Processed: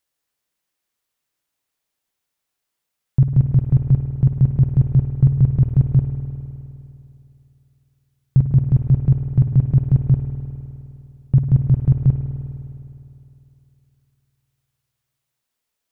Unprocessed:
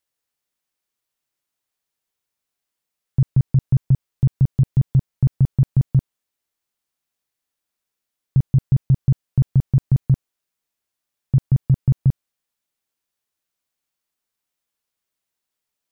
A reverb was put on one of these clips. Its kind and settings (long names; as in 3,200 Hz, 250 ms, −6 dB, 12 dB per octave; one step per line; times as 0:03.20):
spring reverb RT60 2.8 s, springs 51 ms, chirp 40 ms, DRR 5 dB
level +2.5 dB